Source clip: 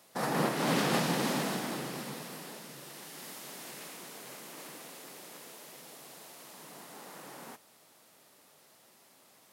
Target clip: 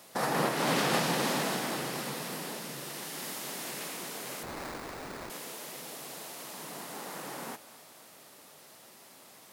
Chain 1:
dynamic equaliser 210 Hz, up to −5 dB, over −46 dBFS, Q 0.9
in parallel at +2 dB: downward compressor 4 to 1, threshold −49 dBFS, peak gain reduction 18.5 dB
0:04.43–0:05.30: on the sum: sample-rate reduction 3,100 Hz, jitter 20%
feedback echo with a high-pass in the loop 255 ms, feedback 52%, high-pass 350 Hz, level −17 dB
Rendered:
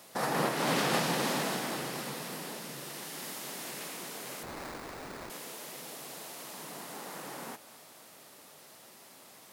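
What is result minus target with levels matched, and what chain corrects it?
downward compressor: peak gain reduction +5 dB
dynamic equaliser 210 Hz, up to −5 dB, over −46 dBFS, Q 0.9
in parallel at +2 dB: downward compressor 4 to 1, threshold −42 dBFS, peak gain reduction 13.5 dB
0:04.43–0:05.30: on the sum: sample-rate reduction 3,100 Hz, jitter 20%
feedback echo with a high-pass in the loop 255 ms, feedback 52%, high-pass 350 Hz, level −17 dB

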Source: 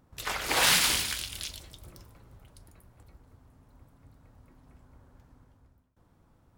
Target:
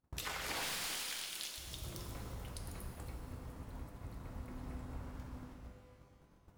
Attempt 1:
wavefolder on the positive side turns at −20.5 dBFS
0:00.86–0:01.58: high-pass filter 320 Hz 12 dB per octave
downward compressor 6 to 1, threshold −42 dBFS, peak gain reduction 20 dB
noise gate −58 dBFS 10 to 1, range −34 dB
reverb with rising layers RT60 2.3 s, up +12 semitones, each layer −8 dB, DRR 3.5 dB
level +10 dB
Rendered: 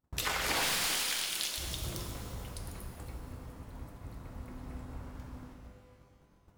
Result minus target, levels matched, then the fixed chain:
downward compressor: peak gain reduction −9 dB
wavefolder on the positive side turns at −20.5 dBFS
0:00.86–0:01.58: high-pass filter 320 Hz 12 dB per octave
downward compressor 6 to 1, threshold −52.5 dBFS, peak gain reduction 28.5 dB
noise gate −58 dBFS 10 to 1, range −34 dB
reverb with rising layers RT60 2.3 s, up +12 semitones, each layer −8 dB, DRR 3.5 dB
level +10 dB

